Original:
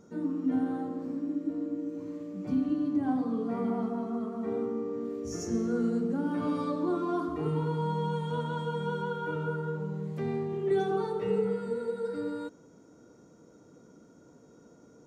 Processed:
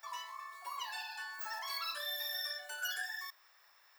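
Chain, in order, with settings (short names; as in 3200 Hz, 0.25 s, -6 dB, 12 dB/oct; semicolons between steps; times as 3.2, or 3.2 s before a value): differentiator; wide varispeed 3.78×; gain +13.5 dB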